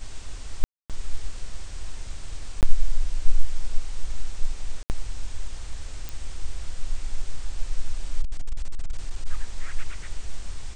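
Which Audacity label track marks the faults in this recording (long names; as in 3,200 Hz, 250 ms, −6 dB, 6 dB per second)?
0.640000	0.900000	drop-out 257 ms
2.610000	2.630000	drop-out 18 ms
4.830000	4.900000	drop-out 69 ms
6.090000	6.090000	click
8.210000	9.270000	clipping −20 dBFS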